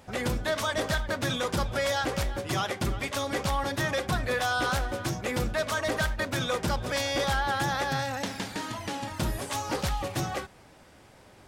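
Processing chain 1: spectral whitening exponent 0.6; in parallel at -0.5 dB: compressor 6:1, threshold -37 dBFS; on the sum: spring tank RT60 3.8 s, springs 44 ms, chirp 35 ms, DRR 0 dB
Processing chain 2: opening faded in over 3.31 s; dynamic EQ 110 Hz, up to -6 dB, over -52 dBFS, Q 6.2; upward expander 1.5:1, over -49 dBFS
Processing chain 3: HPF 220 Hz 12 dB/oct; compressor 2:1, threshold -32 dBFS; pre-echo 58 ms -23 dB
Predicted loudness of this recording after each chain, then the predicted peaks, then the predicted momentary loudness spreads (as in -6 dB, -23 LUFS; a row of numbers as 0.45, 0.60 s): -24.0, -32.0, -33.5 LUFS; -10.0, -18.5, -19.0 dBFS; 5, 13, 4 LU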